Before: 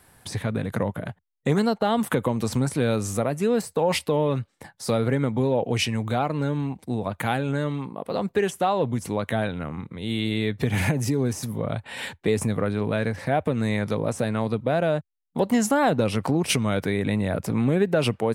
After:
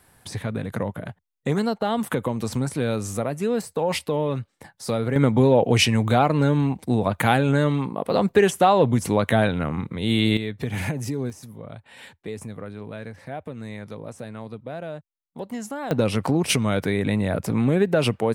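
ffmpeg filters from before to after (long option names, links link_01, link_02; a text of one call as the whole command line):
ffmpeg -i in.wav -af "asetnsamples=nb_out_samples=441:pad=0,asendcmd='5.16 volume volume 6dB;10.37 volume volume -4dB;11.3 volume volume -11dB;15.91 volume volume 1.5dB',volume=-1.5dB" out.wav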